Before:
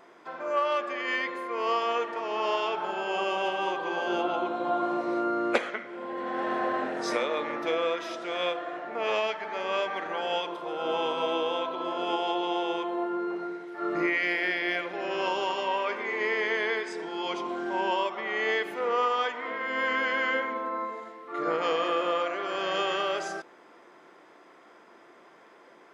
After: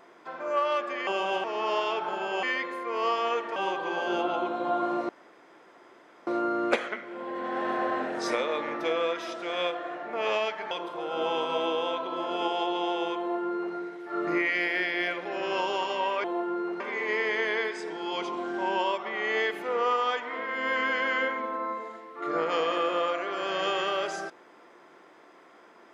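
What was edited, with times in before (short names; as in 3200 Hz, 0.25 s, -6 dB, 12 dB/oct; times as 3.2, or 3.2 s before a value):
1.07–2.2 swap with 3.19–3.56
5.09 insert room tone 1.18 s
9.53–10.39 cut
12.87–13.43 copy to 15.92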